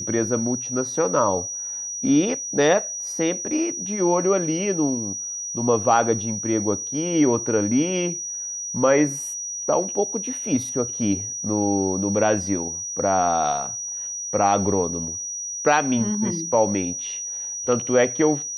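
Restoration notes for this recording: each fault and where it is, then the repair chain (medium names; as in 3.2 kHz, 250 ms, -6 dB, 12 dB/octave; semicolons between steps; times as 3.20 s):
whine 5.8 kHz -28 dBFS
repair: band-stop 5.8 kHz, Q 30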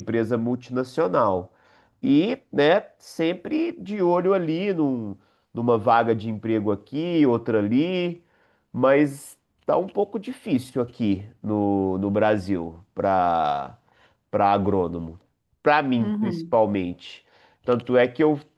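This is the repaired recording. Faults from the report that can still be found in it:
nothing left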